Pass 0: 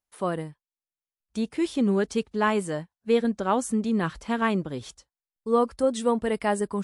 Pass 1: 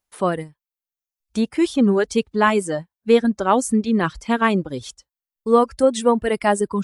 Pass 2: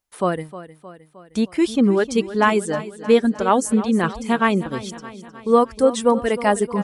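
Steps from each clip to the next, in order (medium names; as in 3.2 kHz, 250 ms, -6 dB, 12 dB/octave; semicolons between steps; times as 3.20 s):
reverb removal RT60 1 s; trim +7.5 dB
feedback delay 310 ms, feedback 59%, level -15 dB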